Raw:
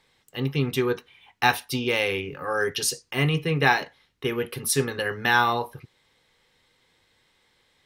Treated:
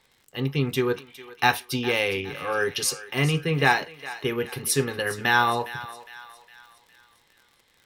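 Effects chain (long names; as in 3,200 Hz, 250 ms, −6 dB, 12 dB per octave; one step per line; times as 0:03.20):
feedback echo with a high-pass in the loop 410 ms, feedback 49%, high-pass 800 Hz, level −14 dB
surface crackle 57 per second −43 dBFS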